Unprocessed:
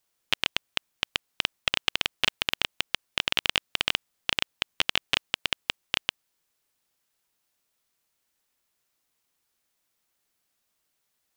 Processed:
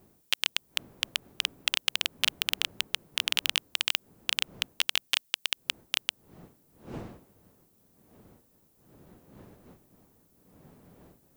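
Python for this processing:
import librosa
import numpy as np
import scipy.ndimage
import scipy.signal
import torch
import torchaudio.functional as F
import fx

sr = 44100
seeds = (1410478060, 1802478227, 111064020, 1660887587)

y = fx.dmg_wind(x, sr, seeds[0], corner_hz=190.0, level_db=-38.0)
y = fx.riaa(y, sr, side='recording')
y = F.gain(torch.from_numpy(y), -6.5).numpy()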